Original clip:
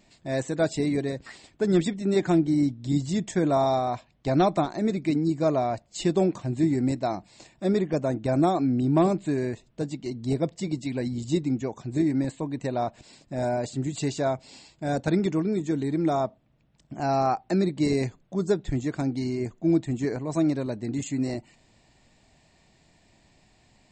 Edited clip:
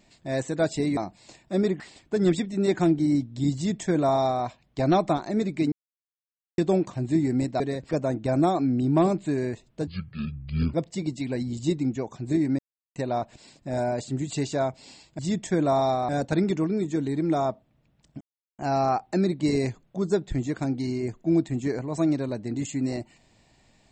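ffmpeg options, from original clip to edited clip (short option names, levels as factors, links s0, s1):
-filter_complex "[0:a]asplit=14[s0][s1][s2][s3][s4][s5][s6][s7][s8][s9][s10][s11][s12][s13];[s0]atrim=end=0.972[s14];[s1]atrim=start=7.078:end=7.912[s15];[s2]atrim=start=1.278:end=5.2,asetpts=PTS-STARTPTS,afade=t=out:st=3.918:d=0.004:c=hsin[s16];[s3]atrim=start=5.2:end=6.06,asetpts=PTS-STARTPTS,volume=0[s17];[s4]atrim=start=6.06:end=7.082,asetpts=PTS-STARTPTS,afade=t=in:d=0.004:c=hsin[s18];[s5]atrim=start=0.968:end=1.282[s19];[s6]atrim=start=7.908:end=9.874[s20];[s7]atrim=start=9.87:end=10.39,asetpts=PTS-STARTPTS,asetrate=26460,aresample=44100[s21];[s8]atrim=start=10.386:end=12.24,asetpts=PTS-STARTPTS,afade=t=out:st=1.85:d=0.004:c=hsin[s22];[s9]atrim=start=12.24:end=12.61,asetpts=PTS-STARTPTS,volume=0[s23];[s10]atrim=start=12.61:end=14.842,asetpts=PTS-STARTPTS,afade=t=in:d=0.004:c=hsin[s24];[s11]atrim=start=3.028:end=3.932[s25];[s12]atrim=start=14.838:end=16.96,asetpts=PTS-STARTPTS,afade=t=out:st=2.118:d=0.004:c=hsin,apad=pad_dur=0.38[s26];[s13]atrim=start=16.96,asetpts=PTS-STARTPTS,afade=t=in:d=0.004:c=hsin[s27];[s14][s15]acrossfade=d=0.004:c1=hsin:c2=hsin[s28];[s16][s17][s18]concat=n=3:v=0:a=1[s29];[s28][s29]acrossfade=d=0.004:c1=hsin:c2=hsin[s30];[s30][s19]acrossfade=d=0.004:c1=hsin:c2=hsin[s31];[s31][s20]acrossfade=d=0.004:c1=hsin:c2=hsin[s32];[s32][s21]acrossfade=d=0.004:c1=hsin:c2=hsin[s33];[s22][s23][s24]concat=n=3:v=0:a=1[s34];[s33][s34]acrossfade=d=0.004:c1=hsin:c2=hsin[s35];[s35][s25]acrossfade=d=0.004:c1=hsin:c2=hsin[s36];[s26][s27]concat=n=2:v=0:a=1[s37];[s36][s37]acrossfade=d=0.004:c1=hsin:c2=hsin"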